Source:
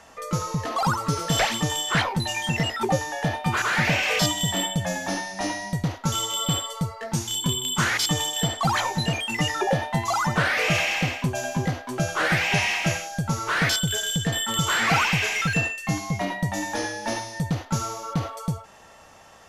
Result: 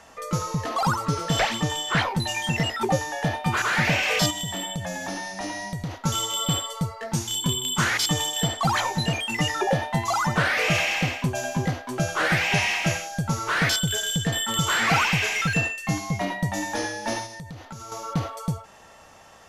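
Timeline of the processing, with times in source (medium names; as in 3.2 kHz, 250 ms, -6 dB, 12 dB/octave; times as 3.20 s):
1.05–2.02 s: treble shelf 7.2 kHz -8.5 dB
4.30–6.02 s: compression 3:1, threshold -28 dBFS
17.26–17.92 s: compression, threshold -36 dBFS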